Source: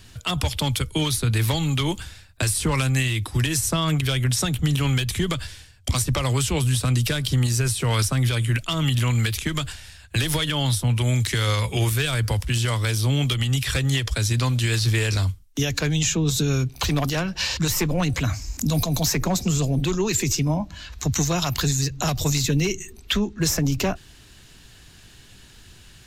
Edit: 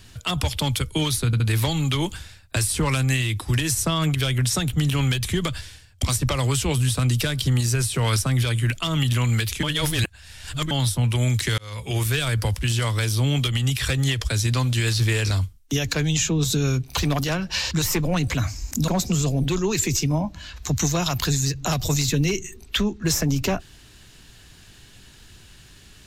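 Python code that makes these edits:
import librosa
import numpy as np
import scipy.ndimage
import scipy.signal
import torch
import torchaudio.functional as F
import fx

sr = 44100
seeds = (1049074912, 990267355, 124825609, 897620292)

y = fx.edit(x, sr, fx.stutter(start_s=1.26, slice_s=0.07, count=3),
    fx.reverse_span(start_s=9.49, length_s=1.08),
    fx.fade_in_span(start_s=11.44, length_s=0.51),
    fx.cut(start_s=18.74, length_s=0.5), tone=tone)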